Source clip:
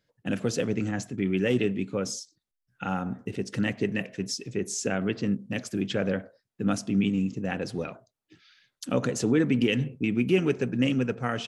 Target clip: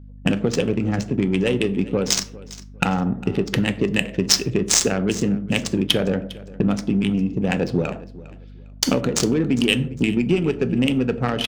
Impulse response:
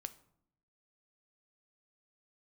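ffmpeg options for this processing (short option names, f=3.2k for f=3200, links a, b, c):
-filter_complex "[0:a]agate=range=-13dB:threshold=-44dB:ratio=16:detection=peak,acompressor=threshold=-39dB:ratio=6,aexciter=amount=5.6:drive=1.4:freq=2.5k,adynamicsmooth=sensitivity=4:basefreq=790,aecho=1:1:404|808:0.106|0.0275[a];[1:a]atrim=start_sample=2205,afade=t=out:st=0.31:d=0.01,atrim=end_sample=14112,asetrate=66150,aresample=44100[b];[a][b]afir=irnorm=-1:irlink=0,aeval=exprs='val(0)+0.000398*(sin(2*PI*50*n/s)+sin(2*PI*2*50*n/s)/2+sin(2*PI*3*50*n/s)/3+sin(2*PI*4*50*n/s)/4+sin(2*PI*5*50*n/s)/5)':c=same,alimiter=level_in=29.5dB:limit=-1dB:release=50:level=0:latency=1,volume=-1dB"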